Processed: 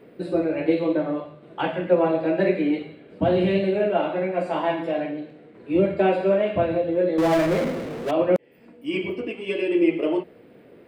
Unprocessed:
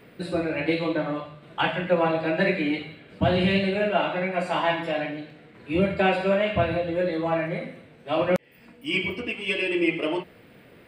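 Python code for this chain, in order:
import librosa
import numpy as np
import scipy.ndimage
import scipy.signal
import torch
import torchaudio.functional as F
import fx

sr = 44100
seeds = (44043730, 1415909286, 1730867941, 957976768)

y = fx.peak_eq(x, sr, hz=390.0, db=13.5, octaves=2.3)
y = fx.power_curve(y, sr, exponent=0.5, at=(7.18, 8.11))
y = F.gain(torch.from_numpy(y), -8.0).numpy()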